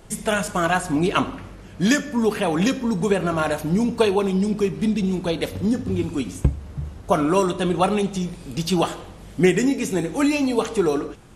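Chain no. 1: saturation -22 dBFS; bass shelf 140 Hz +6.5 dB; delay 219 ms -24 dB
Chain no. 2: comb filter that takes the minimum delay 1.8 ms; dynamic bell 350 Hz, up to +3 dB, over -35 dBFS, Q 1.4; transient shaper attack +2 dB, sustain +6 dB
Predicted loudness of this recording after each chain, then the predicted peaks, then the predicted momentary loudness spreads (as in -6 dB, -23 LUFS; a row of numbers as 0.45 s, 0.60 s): -26.0 LUFS, -21.5 LUFS; -15.5 dBFS, -2.5 dBFS; 5 LU, 9 LU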